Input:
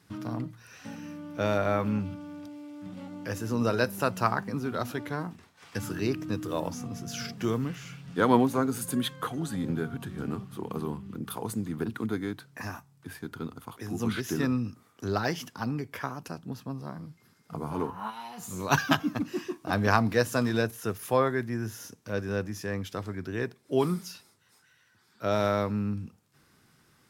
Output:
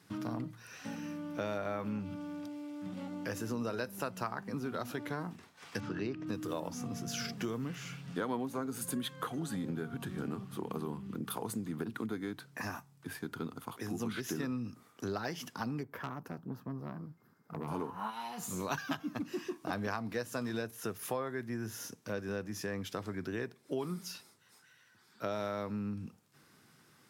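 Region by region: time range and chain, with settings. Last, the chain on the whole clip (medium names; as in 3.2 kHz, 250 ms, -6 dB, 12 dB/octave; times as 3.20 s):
5.80–6.27 s: median filter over 5 samples + distance through air 120 m
15.83–17.68 s: high-order bell 4.9 kHz -13 dB 2.7 oct + valve stage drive 31 dB, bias 0.5
whole clip: high-pass 120 Hz; compression 5:1, threshold -34 dBFS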